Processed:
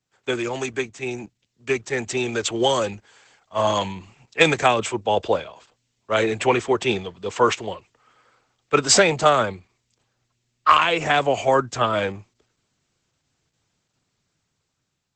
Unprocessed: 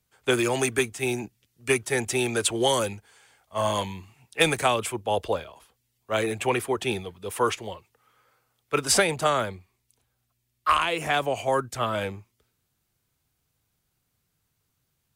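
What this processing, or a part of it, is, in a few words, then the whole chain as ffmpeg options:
video call: -af "highpass=110,dynaudnorm=framelen=990:gausssize=5:maxgain=15dB,volume=-1dB" -ar 48000 -c:a libopus -b:a 12k

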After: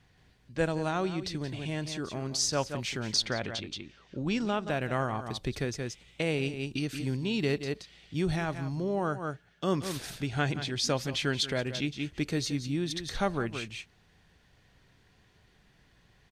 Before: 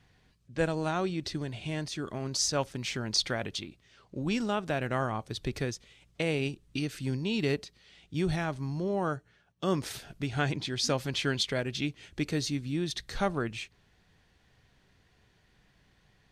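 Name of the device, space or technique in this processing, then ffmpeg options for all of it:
ducked delay: -filter_complex "[0:a]asplit=3[link_01][link_02][link_03];[link_02]adelay=176,volume=-2dB[link_04];[link_03]apad=whole_len=727041[link_05];[link_04][link_05]sidechaincompress=threshold=-41dB:ratio=8:attack=10:release=137[link_06];[link_01][link_06]amix=inputs=2:normalize=0,asettb=1/sr,asplit=3[link_07][link_08][link_09];[link_07]atrim=end=3.254[link_10];[link_08]atrim=start=3.25:end=4.7,asetpts=PTS-STARTPTS,afade=type=in:duration=0.004:curve=qsin,afade=type=out:start_time=1.446:duration=0.004:curve=qsin,lowpass=6700[link_11];[link_09]atrim=start=4.696[link_12];[link_10][link_11]acrossfade=duration=0.004:curve1=hsin:curve2=qsin[link_13];[link_13][link_12]acrossfade=duration=0.004:curve1=qsin:curve2=hsin"

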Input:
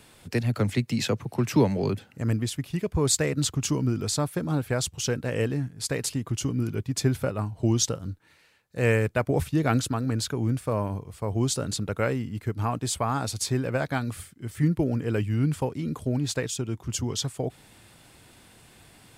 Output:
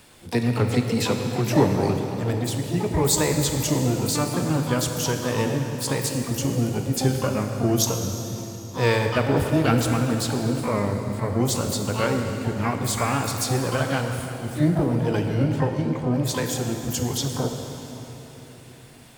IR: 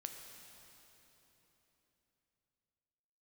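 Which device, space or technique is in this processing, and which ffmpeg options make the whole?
shimmer-style reverb: -filter_complex "[0:a]asplit=3[link_01][link_02][link_03];[link_01]afade=type=out:start_time=15.43:duration=0.02[link_04];[link_02]lowpass=5000,afade=type=in:start_time=15.43:duration=0.02,afade=type=out:start_time=16.12:duration=0.02[link_05];[link_03]afade=type=in:start_time=16.12:duration=0.02[link_06];[link_04][link_05][link_06]amix=inputs=3:normalize=0,asplit=2[link_07][link_08];[link_08]asetrate=88200,aresample=44100,atempo=0.5,volume=-7dB[link_09];[link_07][link_09]amix=inputs=2:normalize=0[link_10];[1:a]atrim=start_sample=2205[link_11];[link_10][link_11]afir=irnorm=-1:irlink=0,volume=6dB"

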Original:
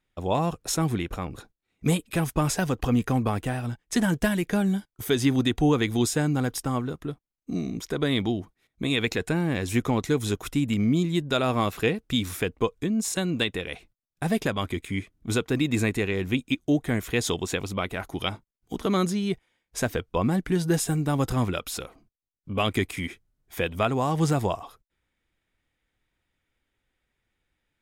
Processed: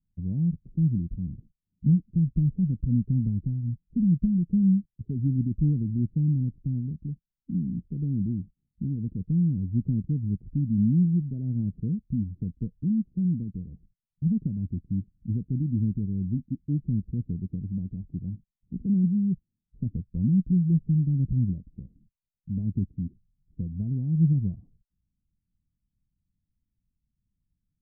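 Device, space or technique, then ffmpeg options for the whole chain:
the neighbour's flat through the wall: -af "lowpass=frequency=200:width=0.5412,lowpass=frequency=200:width=1.3066,equalizer=frequency=190:width_type=o:width=0.8:gain=5,volume=1.5dB"

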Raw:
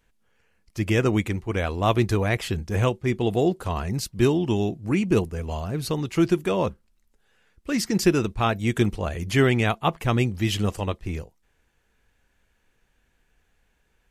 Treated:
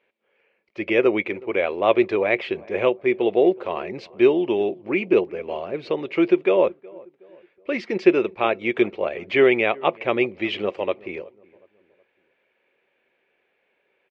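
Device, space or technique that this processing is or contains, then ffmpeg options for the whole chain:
phone earpiece: -filter_complex "[0:a]highpass=340,equalizer=frequency=380:width_type=q:width=4:gain=9,equalizer=frequency=560:width_type=q:width=4:gain=10,equalizer=frequency=1500:width_type=q:width=4:gain=-3,equalizer=frequency=2300:width_type=q:width=4:gain=9,lowpass=frequency=3400:width=0.5412,lowpass=frequency=3400:width=1.3066,asplit=2[link_01][link_02];[link_02]adelay=369,lowpass=frequency=1300:poles=1,volume=-23dB,asplit=2[link_03][link_04];[link_04]adelay=369,lowpass=frequency=1300:poles=1,volume=0.45,asplit=2[link_05][link_06];[link_06]adelay=369,lowpass=frequency=1300:poles=1,volume=0.45[link_07];[link_01][link_03][link_05][link_07]amix=inputs=4:normalize=0"

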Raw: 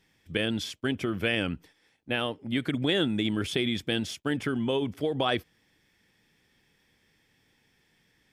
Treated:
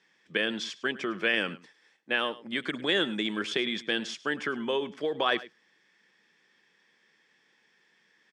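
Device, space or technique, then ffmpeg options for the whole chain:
television speaker: -filter_complex "[0:a]asettb=1/sr,asplit=3[link_01][link_02][link_03];[link_01]atrim=end=1.344[link_04];[link_02]atrim=start=1.34:end=3.45,asetpts=PTS-STARTPTS,afade=type=in:duration=0.004:curve=qsin,afade=type=out:start_time=2.106:duration=0.004:curve=qsin,equalizer=frequency=9600:width_type=o:width=1.2:gain=5[link_05];[link_03]atrim=start=3.446[link_06];[link_04][link_05]acrossfade=duration=0.004:curve1=hsin:curve2=qsin[link_07];[link_07][link_06]acrossfade=duration=0.004:curve1=qsin:curve2=hsin,highpass=frequency=210:width=0.5412,highpass=frequency=210:width=1.3066,equalizer=frequency=270:width_type=q:width=4:gain=-9,equalizer=frequency=710:width_type=q:width=4:gain=-3,equalizer=frequency=1100:width_type=q:width=4:gain=5,equalizer=frequency=1700:width_type=q:width=4:gain=6,lowpass=frequency=7300:width=0.5412,lowpass=frequency=7300:width=1.3066,aecho=1:1:104:0.126"

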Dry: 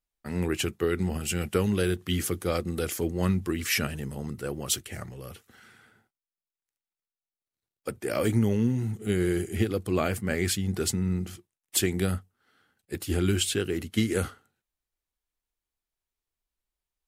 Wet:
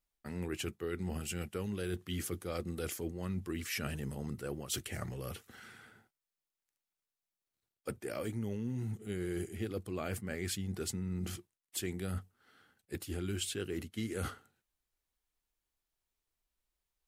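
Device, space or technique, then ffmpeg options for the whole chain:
compression on the reversed sound: -af "areverse,acompressor=threshold=-37dB:ratio=5,areverse,volume=1dB"

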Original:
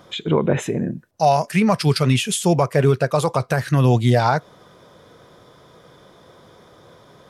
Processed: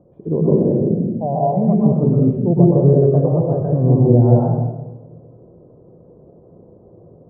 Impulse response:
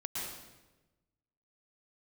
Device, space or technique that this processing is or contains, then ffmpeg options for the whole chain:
next room: -filter_complex "[0:a]lowpass=frequency=570:width=0.5412,lowpass=frequency=570:width=1.3066[link_01];[1:a]atrim=start_sample=2205[link_02];[link_01][link_02]afir=irnorm=-1:irlink=0,asettb=1/sr,asplit=3[link_03][link_04][link_05];[link_03]atrim=end=1.564[link_06];[link_04]atrim=start=1.56:end=2.36,asetpts=PTS-STARTPTS,afade=type=in:duration=0.004:curve=qsin,afade=type=out:start_time=0.796:duration=0.004:curve=qsin,aemphasis=mode=production:type=75fm[link_07];[link_05]atrim=start=2.356[link_08];[link_06][link_07]acrossfade=duration=0.004:curve1=hsin:curve2=qsin[link_09];[link_09][link_08]acrossfade=duration=0.004:curve1=qsin:curve2=hsin,volume=2.5dB"

